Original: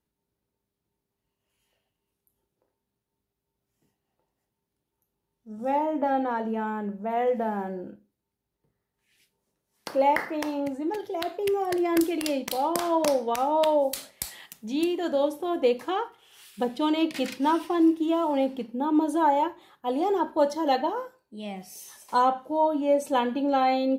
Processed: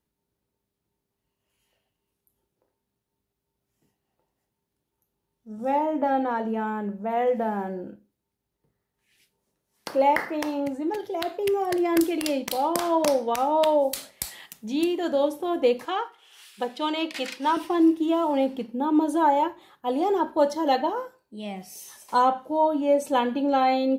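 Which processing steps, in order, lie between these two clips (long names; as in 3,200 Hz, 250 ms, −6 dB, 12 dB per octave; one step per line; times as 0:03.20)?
0:15.85–0:17.57: meter weighting curve A
level +1.5 dB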